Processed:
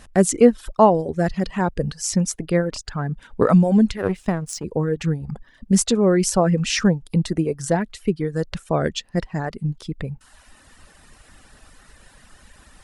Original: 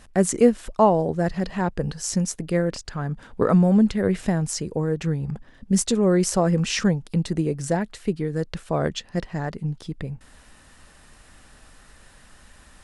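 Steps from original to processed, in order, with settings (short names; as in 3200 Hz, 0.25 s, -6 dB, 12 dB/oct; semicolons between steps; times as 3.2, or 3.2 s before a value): reverb removal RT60 0.89 s; 3.97–4.64 power-law curve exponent 1.4; gain +3.5 dB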